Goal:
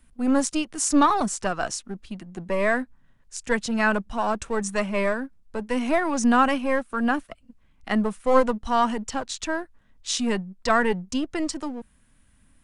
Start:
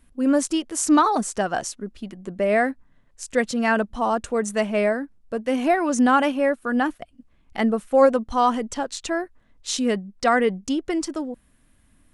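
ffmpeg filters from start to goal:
-filter_complex "[0:a]acrossover=split=290|850[a][b][c];[b]aeval=exprs='max(val(0),0)':c=same[d];[a][d][c]amix=inputs=3:normalize=0,asetrate=42336,aresample=44100"

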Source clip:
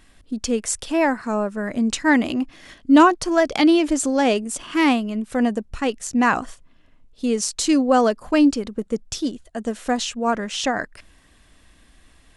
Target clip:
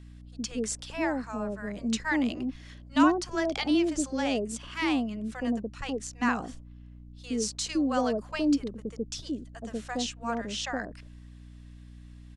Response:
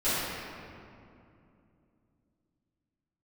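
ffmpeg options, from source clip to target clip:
-filter_complex "[0:a]lowpass=5.5k,acrossover=split=710[a][b];[a]adelay=70[c];[c][b]amix=inputs=2:normalize=0,aeval=exprs='val(0)+0.0141*(sin(2*PI*60*n/s)+sin(2*PI*2*60*n/s)/2+sin(2*PI*3*60*n/s)/3+sin(2*PI*4*60*n/s)/4+sin(2*PI*5*60*n/s)/5)':c=same,acrossover=split=2000[d][e];[e]crystalizer=i=1.5:c=0[f];[d][f]amix=inputs=2:normalize=0,volume=-9dB"

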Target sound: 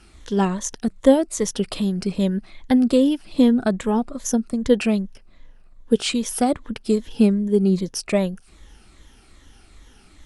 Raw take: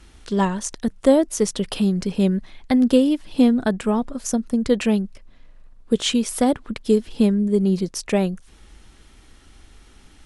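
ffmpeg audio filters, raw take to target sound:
-af "afftfilt=real='re*pow(10,8/40*sin(2*PI*(1.1*log(max(b,1)*sr/1024/100)/log(2)-(-2.5)*(pts-256)/sr)))':imag='im*pow(10,8/40*sin(2*PI*(1.1*log(max(b,1)*sr/1024/100)/log(2)-(-2.5)*(pts-256)/sr)))':win_size=1024:overlap=0.75,volume=-1dB"

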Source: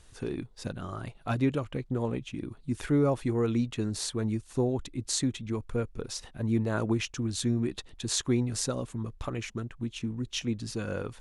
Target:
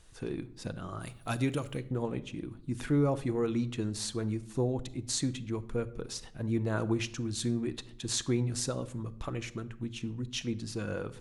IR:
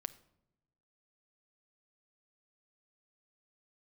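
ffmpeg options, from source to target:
-filter_complex "[0:a]asplit=3[a][b][c];[a]afade=t=out:st=1:d=0.02[d];[b]aemphasis=mode=production:type=75fm,afade=t=in:st=1:d=0.02,afade=t=out:st=1.79:d=0.02[e];[c]afade=t=in:st=1.79:d=0.02[f];[d][e][f]amix=inputs=3:normalize=0[g];[1:a]atrim=start_sample=2205[h];[g][h]afir=irnorm=-1:irlink=0"

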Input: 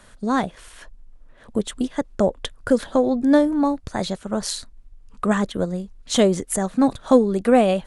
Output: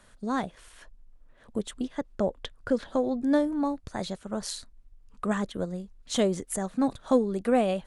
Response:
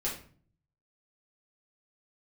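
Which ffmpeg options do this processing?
-filter_complex "[0:a]asettb=1/sr,asplit=3[a][b][c];[a]atrim=end=1.784[d];[b]atrim=start=1.78:end=2.9,asetpts=PTS-STARTPTS,afade=t=in:d=0.004:c=qsin,afade=t=out:st=1.116:d=0.004:c=qsin,acrossover=split=6400[e][f];[f]acompressor=threshold=-59dB:ratio=4:attack=1:release=60[g];[e][g]amix=inputs=2:normalize=0[h];[c]atrim=start=2.896[i];[d][h]acrossfade=d=0.004:c1=hsin:c2=qsin[j];[j][i]acrossfade=d=0.004:c1=qsin:c2=hsin,volume=-8dB"

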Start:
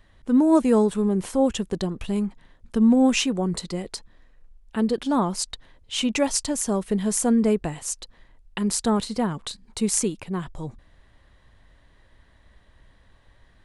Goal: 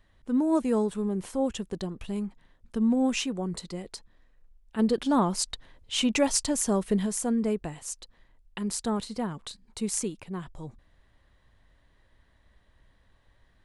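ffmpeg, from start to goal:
-filter_complex "[0:a]asplit=3[a][b][c];[a]afade=t=out:st=4.78:d=0.02[d];[b]acontrast=48,afade=t=in:st=4.78:d=0.02,afade=t=out:st=7.05:d=0.02[e];[c]afade=t=in:st=7.05:d=0.02[f];[d][e][f]amix=inputs=3:normalize=0,volume=-7dB"

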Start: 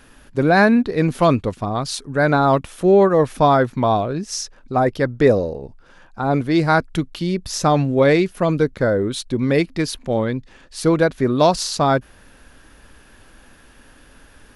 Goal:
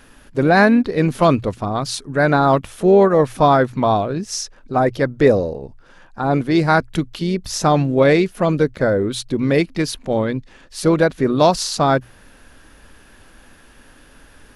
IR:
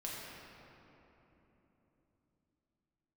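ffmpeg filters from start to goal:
-filter_complex "[0:a]asplit=2[a][b];[b]asetrate=52444,aresample=44100,atempo=0.840896,volume=-18dB[c];[a][c]amix=inputs=2:normalize=0,bandreject=f=60:t=h:w=6,bandreject=f=120:t=h:w=6,volume=1dB"

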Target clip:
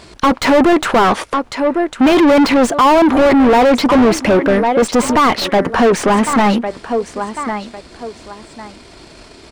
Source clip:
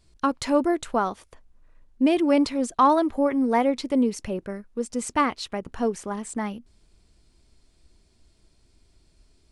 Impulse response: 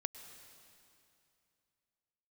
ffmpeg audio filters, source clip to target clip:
-filter_complex "[0:a]aeval=exprs='if(lt(val(0),0),0.708*val(0),val(0))':c=same,aecho=1:1:1101|2202:0.1|0.023,asplit=2[a][b];[b]highpass=f=720:p=1,volume=37dB,asoftclip=type=tanh:threshold=-9dB[c];[a][c]amix=inputs=2:normalize=0,lowpass=f=1.4k:p=1,volume=-6dB,volume=6.5dB"

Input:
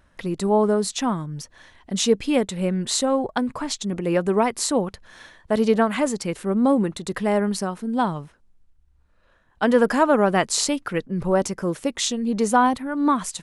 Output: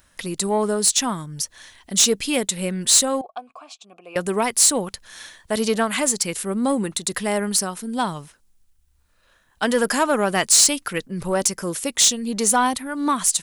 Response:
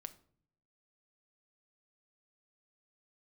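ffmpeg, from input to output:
-filter_complex "[0:a]asettb=1/sr,asplit=3[a][b][c];[a]atrim=end=3.214[d];[b]atrim=start=3.21:end=4.16,asetpts=PTS-STARTPTS,afade=t=in:d=0.004:c=qsin,afade=t=out:st=0.946:d=0.004:c=qsin,asplit=3[e][f][g];[e]bandpass=f=730:t=q:w=8,volume=0dB[h];[f]bandpass=f=1.09k:t=q:w=8,volume=-6dB[i];[g]bandpass=f=2.44k:t=q:w=8,volume=-9dB[j];[h][i][j]amix=inputs=3:normalize=0[k];[c]atrim=start=4.156[l];[d][k]acrossfade=d=0.004:c1=hsin:c2=qsin[m];[m][l]acrossfade=d=0.004:c1=qsin:c2=hsin,crystalizer=i=6.5:c=0,asoftclip=type=tanh:threshold=-5dB,volume=-3dB"

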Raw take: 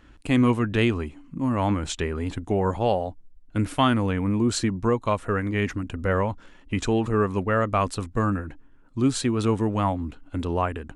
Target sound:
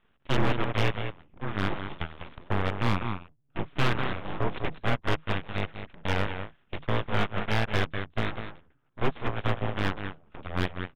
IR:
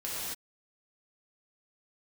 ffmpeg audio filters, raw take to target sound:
-filter_complex "[0:a]lowshelf=f=67:g=-11,aeval=exprs='0.376*(cos(1*acos(clip(val(0)/0.376,-1,1)))-cos(1*PI/2))+0.0119*(cos(3*acos(clip(val(0)/0.376,-1,1)))-cos(3*PI/2))+0.00237*(cos(4*acos(clip(val(0)/0.376,-1,1)))-cos(4*PI/2))+0.00473*(cos(5*acos(clip(val(0)/0.376,-1,1)))-cos(5*PI/2))+0.0596*(cos(7*acos(clip(val(0)/0.376,-1,1)))-cos(7*PI/2))':c=same,asplit=2[a][b];[b]acompressor=threshold=-39dB:ratio=5,volume=-1dB[c];[a][c]amix=inputs=2:normalize=0,asplit=2[d][e];[e]adelay=198.3,volume=-9dB,highshelf=f=4k:g=-4.46[f];[d][f]amix=inputs=2:normalize=0,afreqshift=-80,aeval=exprs='abs(val(0))':c=same,aresample=8000,aresample=44100,acontrast=89,volume=9dB,asoftclip=hard,volume=-9dB,volume=-6dB"

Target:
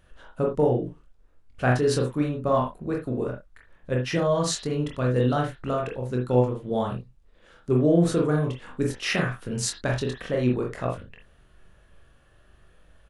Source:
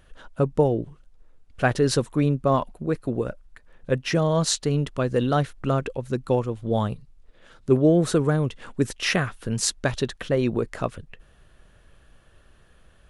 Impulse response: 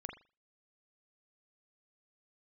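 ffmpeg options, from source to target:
-filter_complex "[0:a]asplit=2[a][b];[b]adelay=24,volume=-6dB[c];[a][c]amix=inputs=2:normalize=0[d];[1:a]atrim=start_sample=2205,atrim=end_sample=3969[e];[d][e]afir=irnorm=-1:irlink=0"

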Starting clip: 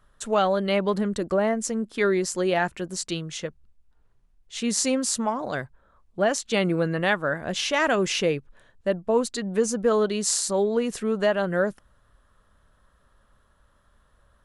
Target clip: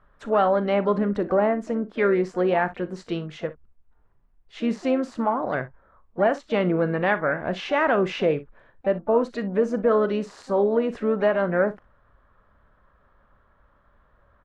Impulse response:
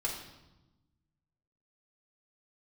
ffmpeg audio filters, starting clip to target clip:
-filter_complex "[0:a]deesser=0.5,lowpass=1.6k,lowshelf=f=340:g=-5,asplit=2[a][b];[b]alimiter=limit=-20.5dB:level=0:latency=1:release=86,volume=-2dB[c];[a][c]amix=inputs=2:normalize=0,asplit=2[d][e];[e]asetrate=58866,aresample=44100,atempo=0.749154,volume=-16dB[f];[d][f]amix=inputs=2:normalize=0,asplit=2[g][h];[h]aecho=0:1:39|60:0.168|0.133[i];[g][i]amix=inputs=2:normalize=0"

